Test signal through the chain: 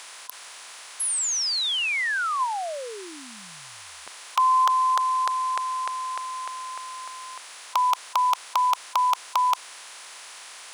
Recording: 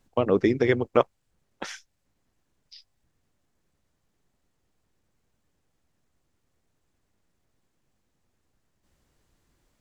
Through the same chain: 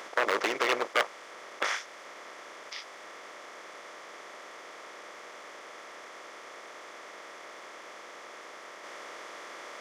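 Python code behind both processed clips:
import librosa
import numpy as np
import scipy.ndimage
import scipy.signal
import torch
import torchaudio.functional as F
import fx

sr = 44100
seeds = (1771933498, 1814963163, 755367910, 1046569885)

y = fx.bin_compress(x, sr, power=0.4)
y = 10.0 ** (-11.0 / 20.0) * (np.abs((y / 10.0 ** (-11.0 / 20.0) + 3.0) % 4.0 - 2.0) - 1.0)
y = scipy.signal.sosfilt(scipy.signal.butter(2, 850.0, 'highpass', fs=sr, output='sos'), y)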